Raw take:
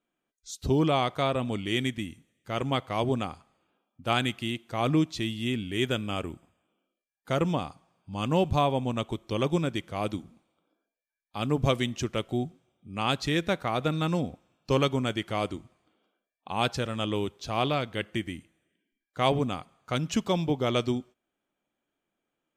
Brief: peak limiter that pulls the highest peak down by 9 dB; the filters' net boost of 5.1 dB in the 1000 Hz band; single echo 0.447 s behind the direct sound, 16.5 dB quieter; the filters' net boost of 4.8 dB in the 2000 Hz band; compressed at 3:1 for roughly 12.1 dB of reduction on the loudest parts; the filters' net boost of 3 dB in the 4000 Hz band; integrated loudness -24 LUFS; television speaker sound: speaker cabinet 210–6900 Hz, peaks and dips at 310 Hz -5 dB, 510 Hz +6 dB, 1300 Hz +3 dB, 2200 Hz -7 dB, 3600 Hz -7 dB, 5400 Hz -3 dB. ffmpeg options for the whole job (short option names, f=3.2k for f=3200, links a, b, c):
-af "equalizer=f=1k:t=o:g=3,equalizer=f=2k:t=o:g=7.5,equalizer=f=4k:t=o:g=7,acompressor=threshold=-33dB:ratio=3,alimiter=limit=-24dB:level=0:latency=1,highpass=f=210:w=0.5412,highpass=f=210:w=1.3066,equalizer=f=310:t=q:w=4:g=-5,equalizer=f=510:t=q:w=4:g=6,equalizer=f=1.3k:t=q:w=4:g=3,equalizer=f=2.2k:t=q:w=4:g=-7,equalizer=f=3.6k:t=q:w=4:g=-7,equalizer=f=5.4k:t=q:w=4:g=-3,lowpass=f=6.9k:w=0.5412,lowpass=f=6.9k:w=1.3066,aecho=1:1:447:0.15,volume=15dB"